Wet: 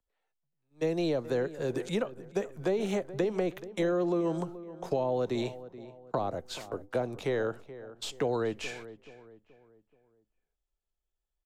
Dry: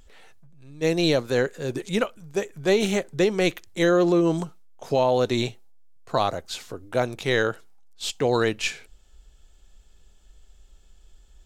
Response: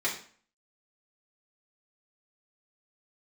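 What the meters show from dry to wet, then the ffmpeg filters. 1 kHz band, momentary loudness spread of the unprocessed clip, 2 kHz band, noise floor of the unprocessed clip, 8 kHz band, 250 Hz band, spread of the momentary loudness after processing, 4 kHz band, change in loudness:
−9.0 dB, 11 LU, −12.5 dB, −55 dBFS, −12.0 dB, −7.5 dB, 12 LU, −12.5 dB, −8.0 dB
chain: -filter_complex "[0:a]agate=range=-31dB:threshold=-40dB:ratio=16:detection=peak,equalizer=frequency=780:width_type=o:width=2.3:gain=8.5,acrossover=split=290|1300[link_01][link_02][link_03];[link_03]alimiter=limit=-20.5dB:level=0:latency=1[link_04];[link_01][link_02][link_04]amix=inputs=3:normalize=0,acrossover=split=160|410[link_05][link_06][link_07];[link_05]acompressor=threshold=-38dB:ratio=4[link_08];[link_06]acompressor=threshold=-27dB:ratio=4[link_09];[link_07]acompressor=threshold=-31dB:ratio=4[link_10];[link_08][link_09][link_10]amix=inputs=3:normalize=0,asplit=2[link_11][link_12];[link_12]adelay=428,lowpass=frequency=1800:poles=1,volume=-15dB,asplit=2[link_13][link_14];[link_14]adelay=428,lowpass=frequency=1800:poles=1,volume=0.42,asplit=2[link_15][link_16];[link_16]adelay=428,lowpass=frequency=1800:poles=1,volume=0.42,asplit=2[link_17][link_18];[link_18]adelay=428,lowpass=frequency=1800:poles=1,volume=0.42[link_19];[link_11][link_13][link_15][link_17][link_19]amix=inputs=5:normalize=0,volume=-4.5dB"

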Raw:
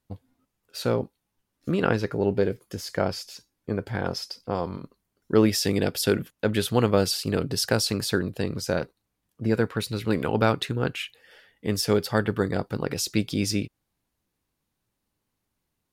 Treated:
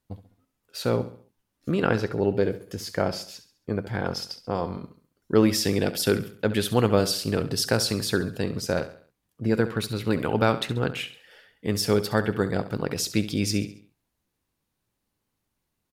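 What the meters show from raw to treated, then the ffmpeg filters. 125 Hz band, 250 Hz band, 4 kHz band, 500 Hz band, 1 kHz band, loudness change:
0.0 dB, +0.5 dB, 0.0 dB, 0.0 dB, +0.5 dB, 0.0 dB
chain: -af "aecho=1:1:68|136|204|272:0.211|0.0888|0.0373|0.0157"

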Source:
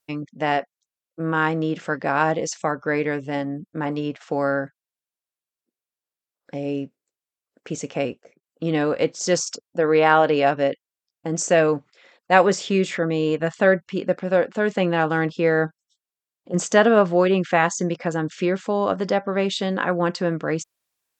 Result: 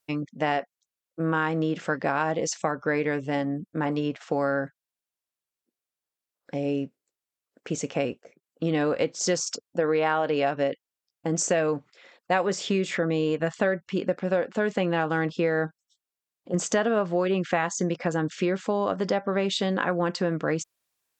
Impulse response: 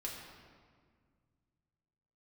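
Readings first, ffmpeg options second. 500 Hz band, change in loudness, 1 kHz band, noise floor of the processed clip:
−5.0 dB, −5.0 dB, −6.0 dB, below −85 dBFS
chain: -af "acompressor=threshold=-21dB:ratio=5"

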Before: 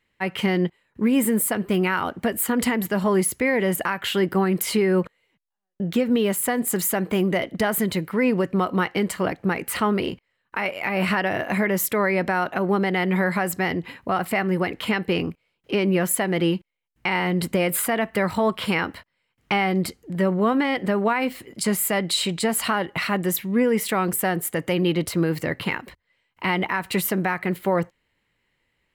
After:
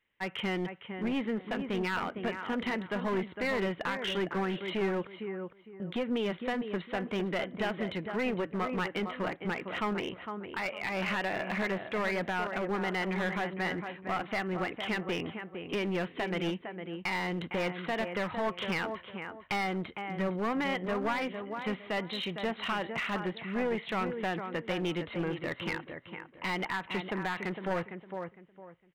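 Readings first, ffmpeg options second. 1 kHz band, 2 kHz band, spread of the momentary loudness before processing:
−8.5 dB, −8.0 dB, 5 LU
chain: -filter_complex "[0:a]lowshelf=frequency=360:gain=-7,aresample=8000,aresample=44100,asplit=2[link_01][link_02];[link_02]adelay=457,lowpass=frequency=2100:poles=1,volume=-8dB,asplit=2[link_03][link_04];[link_04]adelay=457,lowpass=frequency=2100:poles=1,volume=0.27,asplit=2[link_05][link_06];[link_06]adelay=457,lowpass=frequency=2100:poles=1,volume=0.27[link_07];[link_01][link_03][link_05][link_07]amix=inputs=4:normalize=0,aeval=exprs='clip(val(0),-1,0.0708)':channel_layout=same,volume=-6.5dB"

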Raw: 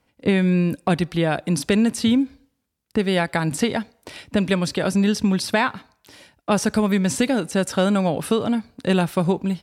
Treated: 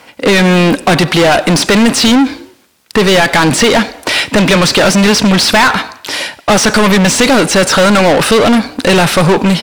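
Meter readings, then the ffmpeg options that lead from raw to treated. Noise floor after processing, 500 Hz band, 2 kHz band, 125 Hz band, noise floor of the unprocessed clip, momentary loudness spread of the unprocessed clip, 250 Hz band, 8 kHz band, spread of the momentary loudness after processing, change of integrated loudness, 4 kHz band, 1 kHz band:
−44 dBFS, +12.5 dB, +16.5 dB, +9.5 dB, −72 dBFS, 6 LU, +9.5 dB, +16.5 dB, 5 LU, +12.0 dB, +18.5 dB, +15.0 dB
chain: -filter_complex "[0:a]asplit=2[link_01][link_02];[link_02]highpass=frequency=720:poles=1,volume=33dB,asoftclip=type=tanh:threshold=-6dB[link_03];[link_01][link_03]amix=inputs=2:normalize=0,lowpass=frequency=6700:poles=1,volume=-6dB,acrossover=split=8200[link_04][link_05];[link_05]acompressor=threshold=-30dB:ratio=4:attack=1:release=60[link_06];[link_04][link_06]amix=inputs=2:normalize=0,asplit=4[link_07][link_08][link_09][link_10];[link_08]adelay=93,afreqshift=33,volume=-23.5dB[link_11];[link_09]adelay=186,afreqshift=66,volume=-29dB[link_12];[link_10]adelay=279,afreqshift=99,volume=-34.5dB[link_13];[link_07][link_11][link_12][link_13]amix=inputs=4:normalize=0,volume=5dB"

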